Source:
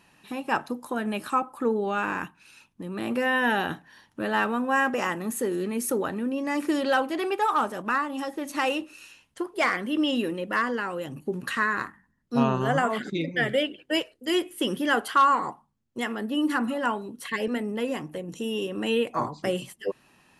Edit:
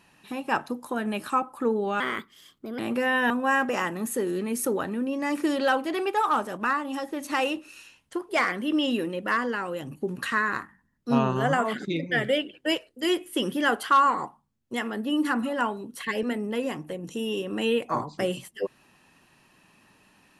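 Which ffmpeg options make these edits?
ffmpeg -i in.wav -filter_complex "[0:a]asplit=4[link_01][link_02][link_03][link_04];[link_01]atrim=end=2.004[link_05];[link_02]atrim=start=2:end=2.99,asetpts=PTS-STARTPTS,asetrate=55125,aresample=44100,atrim=end_sample=34927,asetpts=PTS-STARTPTS[link_06];[link_03]atrim=start=2.986:end=3.502[link_07];[link_04]atrim=start=4.548[link_08];[link_05][link_06]acrossfade=duration=0.004:curve1=hsin:curve2=hsin[link_09];[link_09][link_07]acrossfade=duration=0.004:curve1=hsin:curve2=hsin[link_10];[link_10][link_08]acrossfade=duration=0.004:curve1=hsin:curve2=hsin" out.wav

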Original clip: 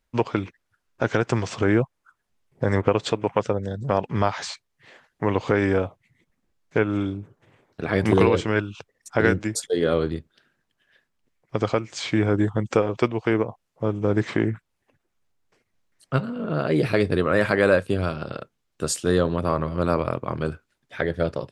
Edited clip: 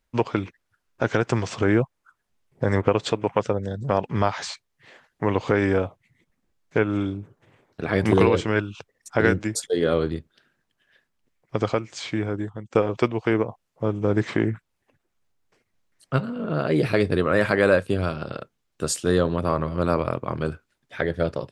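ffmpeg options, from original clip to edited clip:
ffmpeg -i in.wav -filter_complex "[0:a]asplit=2[link_01][link_02];[link_01]atrim=end=12.75,asetpts=PTS-STARTPTS,afade=type=out:start_time=11.61:duration=1.14:silence=0.149624[link_03];[link_02]atrim=start=12.75,asetpts=PTS-STARTPTS,afade=type=in:duration=0.004:curve=hsin:silence=0.149624[link_04];[link_03][link_04]concat=n=2:v=0:a=1" out.wav

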